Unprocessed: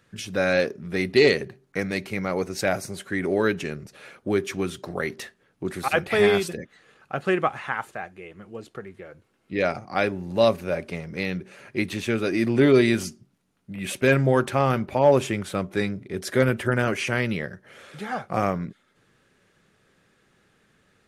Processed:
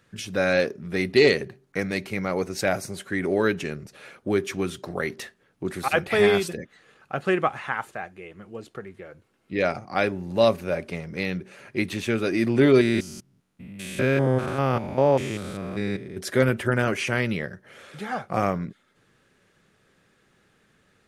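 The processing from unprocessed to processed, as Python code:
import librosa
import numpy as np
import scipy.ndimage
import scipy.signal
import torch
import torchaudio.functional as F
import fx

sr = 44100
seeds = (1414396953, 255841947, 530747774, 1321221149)

y = fx.spec_steps(x, sr, hold_ms=200, at=(12.81, 16.18))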